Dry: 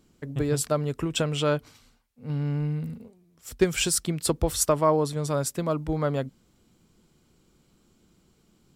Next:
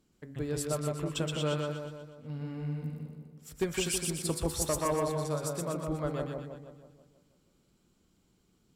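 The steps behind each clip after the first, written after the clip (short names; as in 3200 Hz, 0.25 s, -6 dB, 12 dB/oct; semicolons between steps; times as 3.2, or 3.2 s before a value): de-hum 70.41 Hz, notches 35; one-sided clip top -16 dBFS; split-band echo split 1100 Hz, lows 0.162 s, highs 0.122 s, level -3 dB; gain -8.5 dB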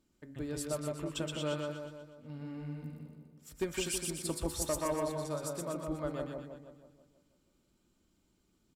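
comb 3.3 ms, depth 32%; gain -4 dB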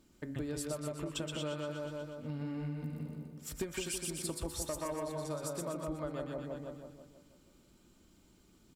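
compressor 6:1, threshold -45 dBFS, peak gain reduction 15 dB; gain +9 dB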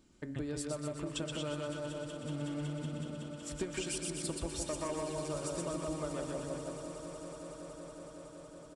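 on a send: swelling echo 0.186 s, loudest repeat 5, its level -15.5 dB; on the sum: downsampling 22050 Hz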